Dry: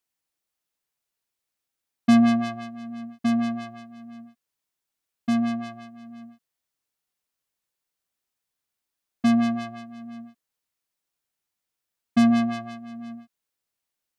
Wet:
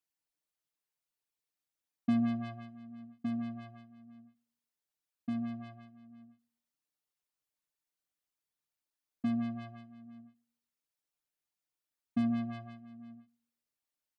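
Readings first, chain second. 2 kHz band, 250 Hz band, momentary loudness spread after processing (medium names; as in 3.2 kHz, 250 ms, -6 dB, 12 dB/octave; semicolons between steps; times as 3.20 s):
-17.0 dB, -12.5 dB, 23 LU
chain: resonances exaggerated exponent 1.5; comb 6.6 ms, depth 35%; FDN reverb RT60 0.42 s, low-frequency decay 1.5×, high-frequency decay 0.95×, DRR 15 dB; trim -8.5 dB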